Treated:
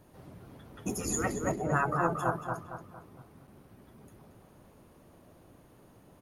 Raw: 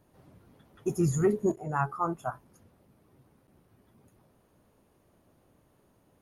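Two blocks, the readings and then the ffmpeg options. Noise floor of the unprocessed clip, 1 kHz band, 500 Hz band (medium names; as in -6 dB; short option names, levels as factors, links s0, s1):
-67 dBFS, +2.0 dB, -3.5 dB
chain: -filter_complex "[0:a]afftfilt=real='re*lt(hypot(re,im),0.178)':imag='im*lt(hypot(re,im),0.178)':win_size=1024:overlap=0.75,asplit=2[s0][s1];[s1]adelay=229,lowpass=f=2900:p=1,volume=0.631,asplit=2[s2][s3];[s3]adelay=229,lowpass=f=2900:p=1,volume=0.43,asplit=2[s4][s5];[s5]adelay=229,lowpass=f=2900:p=1,volume=0.43,asplit=2[s6][s7];[s7]adelay=229,lowpass=f=2900:p=1,volume=0.43,asplit=2[s8][s9];[s9]adelay=229,lowpass=f=2900:p=1,volume=0.43[s10];[s0][s2][s4][s6][s8][s10]amix=inputs=6:normalize=0,volume=2.11"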